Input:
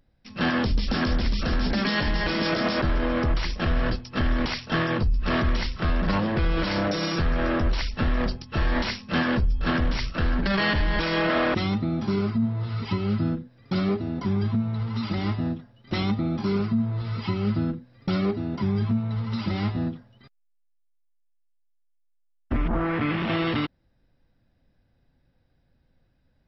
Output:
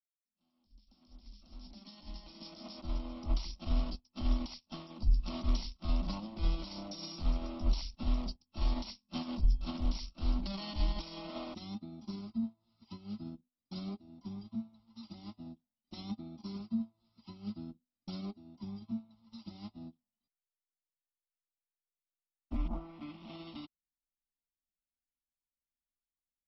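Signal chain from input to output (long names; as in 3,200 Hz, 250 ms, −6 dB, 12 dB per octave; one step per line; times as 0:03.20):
fade in at the beginning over 3.55 s
bass and treble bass +4 dB, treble +13 dB
phaser with its sweep stopped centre 450 Hz, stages 6
expander for the loud parts 2.5 to 1, over −39 dBFS
level −4.5 dB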